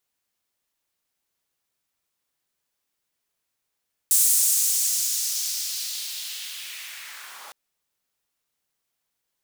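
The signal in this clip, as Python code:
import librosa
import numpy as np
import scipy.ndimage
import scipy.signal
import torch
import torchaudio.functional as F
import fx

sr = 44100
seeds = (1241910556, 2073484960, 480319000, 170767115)

y = fx.riser_noise(sr, seeds[0], length_s=3.41, colour='pink', kind='highpass', start_hz=8500.0, end_hz=780.0, q=1.7, swell_db=-29, law='linear')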